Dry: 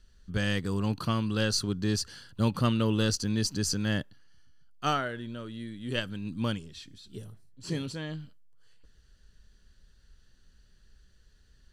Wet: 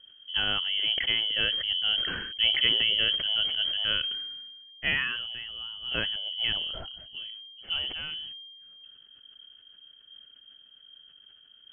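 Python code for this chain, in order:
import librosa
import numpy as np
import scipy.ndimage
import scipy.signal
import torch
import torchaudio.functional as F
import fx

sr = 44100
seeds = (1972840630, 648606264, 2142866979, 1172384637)

y = fx.freq_invert(x, sr, carrier_hz=3200)
y = fx.sustainer(y, sr, db_per_s=35.0)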